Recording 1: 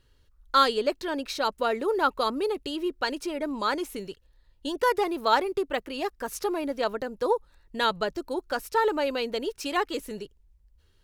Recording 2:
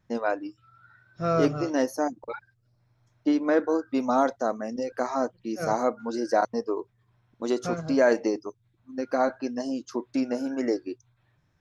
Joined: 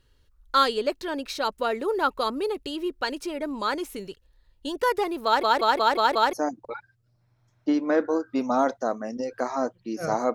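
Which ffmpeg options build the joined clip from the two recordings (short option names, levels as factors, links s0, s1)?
-filter_complex "[0:a]apad=whole_dur=10.34,atrim=end=10.34,asplit=6[s0][s1][s2][s3][s4][s5];[s0]atrim=end=5.432[s6];[s1]atrim=start=5.248:end=5.432[s7];[s2]atrim=start=5.248:end=5.432[s8];[s3]atrim=start=5.248:end=5.432[s9];[s4]atrim=start=5.248:end=5.432[s10];[s5]atrim=start=5.248:end=5.432[s11];[1:a]atrim=start=1.918:end=5.93[s12];[s6][s7]acrossfade=d=0.004:c1=hsin:c2=hsin[s13];[s13][s8]acrossfade=d=0.004:c1=hsin:c2=hsin[s14];[s14][s9]acrossfade=d=0.004:c1=hsin:c2=hsin[s15];[s15][s10]acrossfade=d=0.004:c1=hsin:c2=hsin[s16];[s16][s11]acrossfade=d=0.004:c1=hsin:c2=hsin[s17];[s17][s12]acrossfade=d=0.004:c1=hsin:c2=hsin"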